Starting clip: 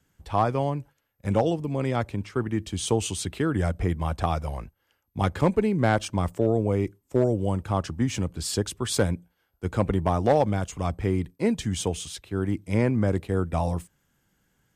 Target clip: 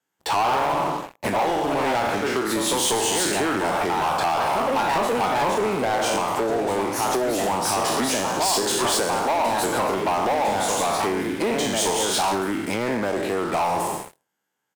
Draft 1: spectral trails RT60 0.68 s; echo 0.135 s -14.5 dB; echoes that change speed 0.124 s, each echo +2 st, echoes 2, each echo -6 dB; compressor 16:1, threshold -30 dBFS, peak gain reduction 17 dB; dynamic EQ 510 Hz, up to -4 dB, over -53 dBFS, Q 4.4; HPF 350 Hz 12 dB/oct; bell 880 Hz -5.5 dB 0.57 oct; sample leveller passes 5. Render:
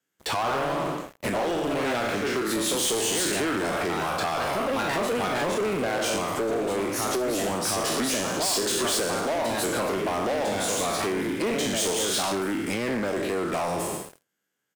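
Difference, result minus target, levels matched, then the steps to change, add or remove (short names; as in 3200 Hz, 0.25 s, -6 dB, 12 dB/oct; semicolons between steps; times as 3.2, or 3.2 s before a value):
1000 Hz band -4.0 dB
change: bell 880 Hz +6 dB 0.57 oct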